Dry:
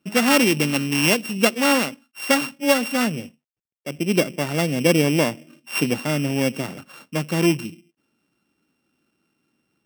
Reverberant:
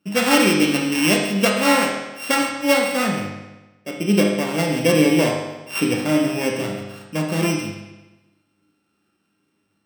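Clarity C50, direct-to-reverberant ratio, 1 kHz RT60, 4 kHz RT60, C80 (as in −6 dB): 2.5 dB, −1.5 dB, 1.1 s, 1.0 s, 5.0 dB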